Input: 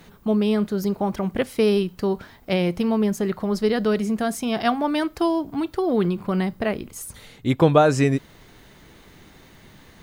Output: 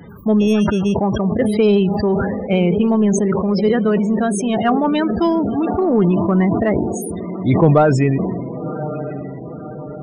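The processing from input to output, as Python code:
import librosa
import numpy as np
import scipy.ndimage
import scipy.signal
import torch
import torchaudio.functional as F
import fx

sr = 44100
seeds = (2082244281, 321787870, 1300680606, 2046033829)

p1 = fx.law_mismatch(x, sr, coded='mu')
p2 = fx.rider(p1, sr, range_db=5, speed_s=2.0)
p3 = p2 + fx.echo_diffused(p2, sr, ms=1084, feedback_pct=57, wet_db=-12.0, dry=0)
p4 = fx.sample_hold(p3, sr, seeds[0], rate_hz=3000.0, jitter_pct=0, at=(0.4, 0.94))
p5 = fx.spec_topn(p4, sr, count=32)
p6 = scipy.signal.sosfilt(scipy.signal.butter(4, 72.0, 'highpass', fs=sr, output='sos'), p5)
p7 = 10.0 ** (-13.5 / 20.0) * np.tanh(p6 / 10.0 ** (-13.5 / 20.0))
p8 = p6 + F.gain(torch.from_numpy(p7), -7.0).numpy()
p9 = fx.low_shelf(p8, sr, hz=99.0, db=9.0)
y = fx.sustainer(p9, sr, db_per_s=32.0)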